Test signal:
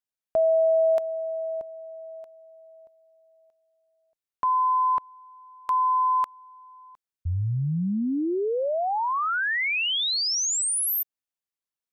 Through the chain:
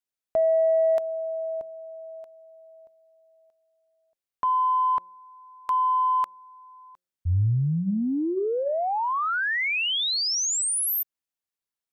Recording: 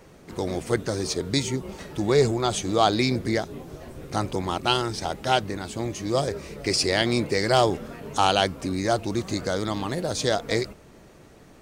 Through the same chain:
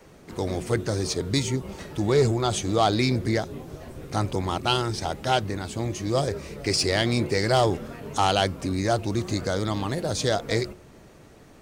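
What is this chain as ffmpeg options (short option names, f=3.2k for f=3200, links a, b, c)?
-af "bandreject=f=180.3:t=h:w=4,bandreject=f=360.6:t=h:w=4,bandreject=f=540.9:t=h:w=4,adynamicequalizer=threshold=0.00891:dfrequency=100:dqfactor=1.5:tfrequency=100:tqfactor=1.5:attack=5:release=100:ratio=0.375:range=2.5:mode=boostabove:tftype=bell,asoftclip=type=tanh:threshold=-10dB"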